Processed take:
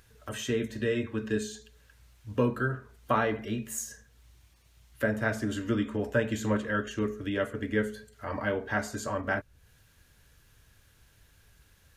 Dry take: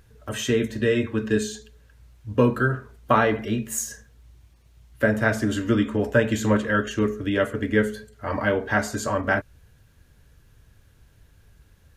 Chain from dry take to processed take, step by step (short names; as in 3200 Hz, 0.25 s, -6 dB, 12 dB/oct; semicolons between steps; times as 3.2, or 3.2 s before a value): mismatched tape noise reduction encoder only; gain -7.5 dB